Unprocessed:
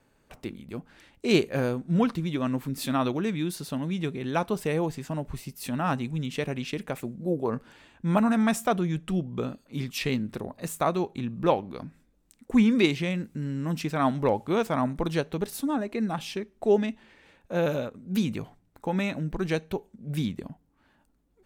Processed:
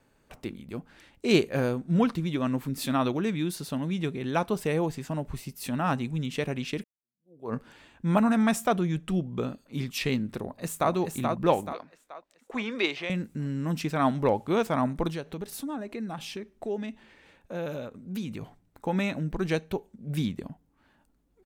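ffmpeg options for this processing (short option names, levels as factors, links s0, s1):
-filter_complex "[0:a]asplit=2[s0][s1];[s1]afade=t=in:st=10.39:d=0.01,afade=t=out:st=10.92:d=0.01,aecho=0:1:430|860|1290|1720|2150|2580:0.630957|0.283931|0.127769|0.057496|0.0258732|0.0116429[s2];[s0][s2]amix=inputs=2:normalize=0,asettb=1/sr,asplit=3[s3][s4][s5];[s3]atrim=end=11.734[s6];[s4]atrim=start=11.73:end=13.1,asetpts=PTS-STARTPTS,afade=t=in:d=0.004:c=qsin,afade=t=out:st=1.366:d=0.004:c=qsin,acrossover=split=390 5400:gain=0.0891 1 0.178[s7][s8][s9];[s7][s8][s9]amix=inputs=3:normalize=0[s10];[s5]atrim=start=13.096[s11];[s6][s10]acrossfade=d=0.004:c1=hsin:c2=qsin[s12];[s12][s11]acrossfade=d=0.004:c1=qsin:c2=hsin,asettb=1/sr,asplit=3[s13][s14][s15];[s13]atrim=end=15.104[s16];[s14]atrim=start=15.1:end=18.42,asetpts=PTS-STARTPTS,afade=t=in:d=0.004:c=qsin,afade=t=out:st=3.316:d=0.004:c=qsin,acompressor=threshold=0.0158:ratio=2:attack=3.2:release=140:knee=1:detection=peak[s17];[s15]atrim=start=18.416[s18];[s16][s17]acrossfade=d=0.004:c1=hsin:c2=qsin[s19];[s19][s18]acrossfade=d=0.004:c1=qsin:c2=hsin,asplit=2[s20][s21];[s20]atrim=end=6.84,asetpts=PTS-STARTPTS,afade=t=out:st=6.836:d=0.004:c=hsin[s22];[s21]atrim=start=6.84,asetpts=PTS-STARTPTS,afade=t=in:d=0.69:c=exp[s23];[s22][s23]concat=n=2:v=0:a=1"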